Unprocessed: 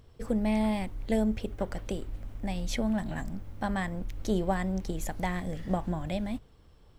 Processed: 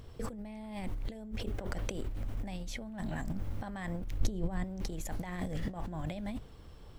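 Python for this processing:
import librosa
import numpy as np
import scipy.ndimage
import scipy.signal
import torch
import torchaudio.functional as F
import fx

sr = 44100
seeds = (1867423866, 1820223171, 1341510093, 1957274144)

y = fx.over_compress(x, sr, threshold_db=-38.0, ratio=-1.0)
y = fx.low_shelf(y, sr, hz=240.0, db=12.0, at=(4.2, 4.64))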